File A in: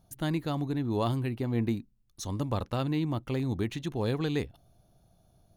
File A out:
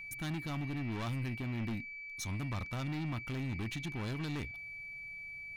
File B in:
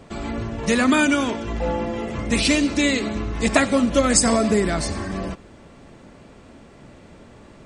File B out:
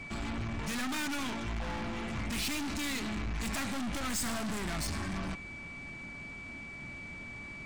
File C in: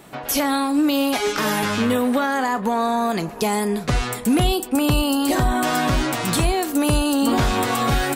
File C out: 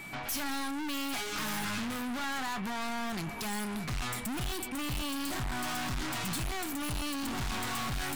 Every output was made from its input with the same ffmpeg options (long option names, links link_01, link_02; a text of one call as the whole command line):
ffmpeg -i in.wav -af "aeval=exprs='val(0)+0.00794*sin(2*PI*2300*n/s)':channel_layout=same,aeval=exprs='(tanh(39.8*val(0)+0.3)-tanh(0.3))/39.8':channel_layout=same,equalizer=frequency=480:width=1.5:gain=-10.5" out.wav